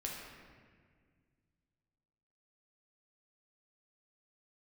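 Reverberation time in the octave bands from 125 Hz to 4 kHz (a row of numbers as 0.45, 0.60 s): 2.9, 2.5, 2.0, 1.6, 1.7, 1.2 s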